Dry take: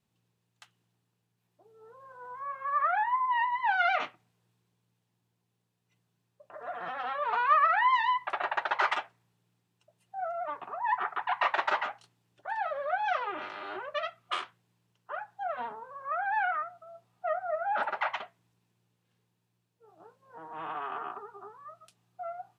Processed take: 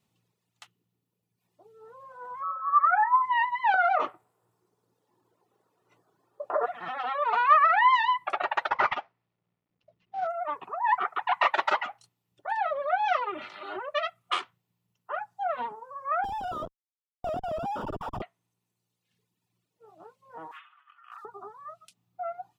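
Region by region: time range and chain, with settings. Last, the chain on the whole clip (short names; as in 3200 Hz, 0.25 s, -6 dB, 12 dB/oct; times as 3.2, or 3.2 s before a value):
2.42–3.21 formant sharpening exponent 2 + comb 6.8 ms, depth 51% + whine 1300 Hz -35 dBFS
3.74–6.66 band shelf 690 Hz +14.5 dB 2.8 oct + compressor 8:1, threshold -24 dBFS + doubler 19 ms -10 dB
8.69–10.27 CVSD 32 kbps + LPF 2300 Hz
16.24–18.22 Schmitt trigger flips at -36.5 dBFS + running mean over 21 samples
20.51–21.25 HPF 1500 Hz 24 dB/oct + negative-ratio compressor -52 dBFS, ratio -0.5
whole clip: reverb removal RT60 1.4 s; low shelf 68 Hz -9.5 dB; notch 1600 Hz, Q 9.7; gain +5 dB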